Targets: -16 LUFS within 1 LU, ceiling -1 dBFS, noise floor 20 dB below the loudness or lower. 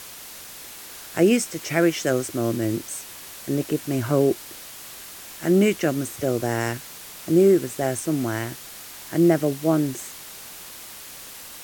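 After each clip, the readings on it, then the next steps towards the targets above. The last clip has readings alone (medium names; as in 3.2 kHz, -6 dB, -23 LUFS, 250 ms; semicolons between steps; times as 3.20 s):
noise floor -40 dBFS; noise floor target -43 dBFS; loudness -23.0 LUFS; peak level -5.5 dBFS; loudness target -16.0 LUFS
-> noise reduction 6 dB, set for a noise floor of -40 dBFS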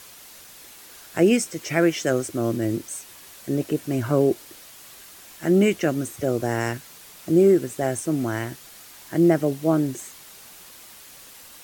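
noise floor -46 dBFS; loudness -23.0 LUFS; peak level -6.0 dBFS; loudness target -16.0 LUFS
-> trim +7 dB; peak limiter -1 dBFS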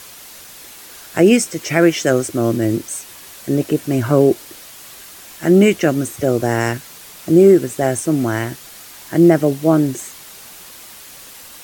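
loudness -16.0 LUFS; peak level -1.0 dBFS; noise floor -39 dBFS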